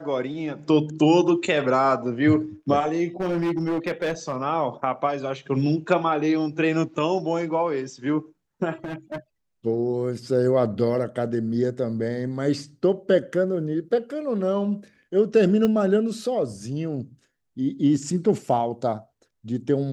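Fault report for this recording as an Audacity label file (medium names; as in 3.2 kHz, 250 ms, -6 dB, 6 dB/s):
3.200000	4.370000	clipped -20.5 dBFS
8.840000	9.180000	clipped -27 dBFS
15.650000	15.650000	pop -12 dBFS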